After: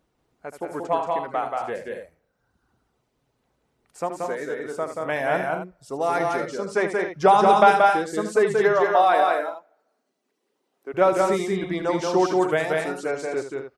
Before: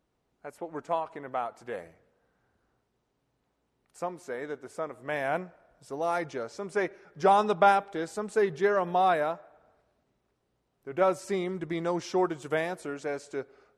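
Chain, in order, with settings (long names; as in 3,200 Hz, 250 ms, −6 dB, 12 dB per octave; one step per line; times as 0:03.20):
reverb reduction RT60 1.2 s
0:08.60–0:10.94: high-pass filter 250 Hz 24 dB per octave
loudspeakers that aren't time-aligned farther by 26 metres −10 dB, 62 metres −3 dB, 75 metres −9 dB, 92 metres −11 dB
level +6 dB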